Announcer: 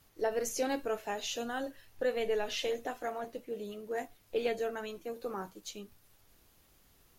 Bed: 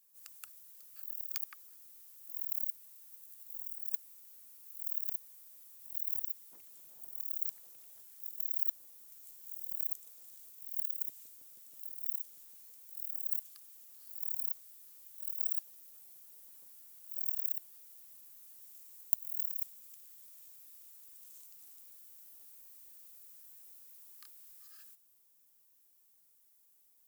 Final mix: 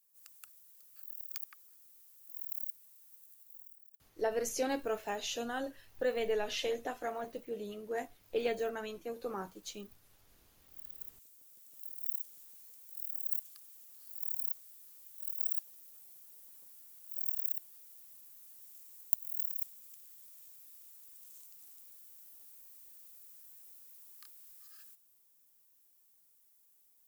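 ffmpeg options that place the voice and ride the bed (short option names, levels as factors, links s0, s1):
-filter_complex "[0:a]adelay=4000,volume=0.891[s0];[1:a]volume=12.6,afade=t=out:st=3.24:d=0.69:silence=0.0794328,afade=t=in:st=10.57:d=1.45:silence=0.0501187[s1];[s0][s1]amix=inputs=2:normalize=0"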